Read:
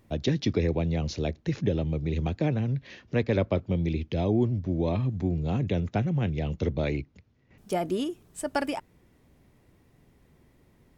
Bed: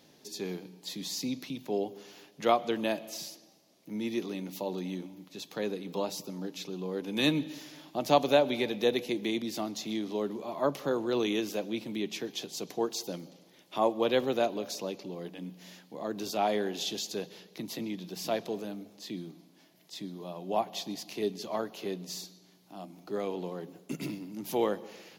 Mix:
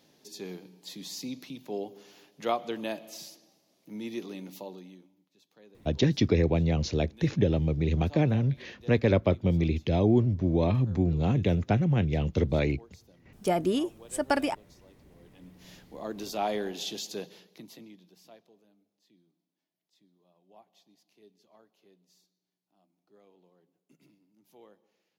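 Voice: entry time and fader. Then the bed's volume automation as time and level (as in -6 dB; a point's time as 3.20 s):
5.75 s, +2.0 dB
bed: 4.53 s -3.5 dB
5.28 s -23 dB
15.07 s -23 dB
15.70 s -1.5 dB
17.27 s -1.5 dB
18.54 s -27 dB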